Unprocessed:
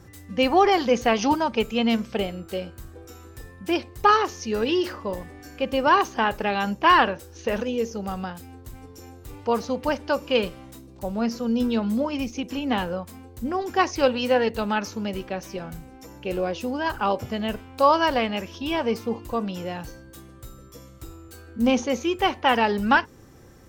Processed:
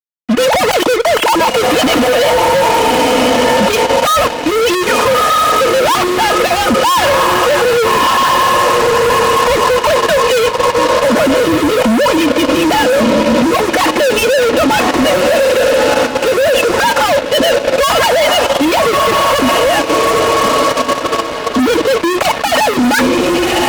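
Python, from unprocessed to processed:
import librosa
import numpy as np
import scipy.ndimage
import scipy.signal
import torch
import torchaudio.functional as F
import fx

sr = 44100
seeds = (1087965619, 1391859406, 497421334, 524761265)

y = fx.sine_speech(x, sr)
y = fx.echo_diffused(y, sr, ms=1286, feedback_pct=48, wet_db=-11.0)
y = fx.fuzz(y, sr, gain_db=43.0, gate_db=-43.0)
y = y + 10.0 ** (-22.0 / 20.0) * np.pad(y, (int(95 * sr / 1000.0), 0))[:len(y)]
y = fx.level_steps(y, sr, step_db=9)
y = fx.notch_comb(y, sr, f0_hz=390.0)
y = y * librosa.db_to_amplitude(8.5)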